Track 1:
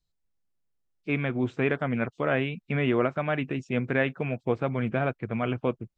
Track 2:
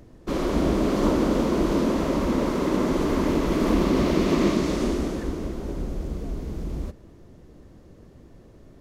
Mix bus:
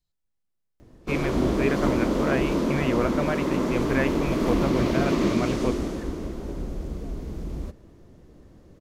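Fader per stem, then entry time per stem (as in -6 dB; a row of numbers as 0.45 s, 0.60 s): -1.0 dB, -2.0 dB; 0.00 s, 0.80 s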